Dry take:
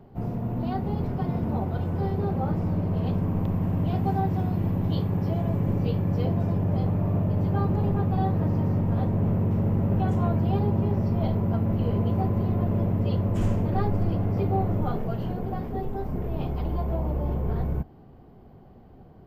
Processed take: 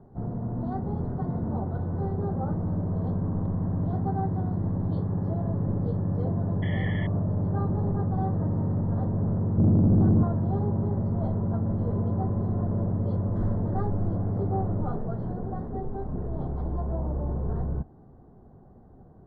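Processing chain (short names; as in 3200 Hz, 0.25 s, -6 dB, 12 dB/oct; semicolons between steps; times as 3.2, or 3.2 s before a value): 9.58–10.23 resonant low shelf 400 Hz +8 dB, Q 3; soft clip -13 dBFS, distortion -15 dB; 6.62–7.07 painted sound noise 1700–3400 Hz -23 dBFS; Butterworth band-stop 2600 Hz, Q 1.2; air absorption 420 m; gain -1.5 dB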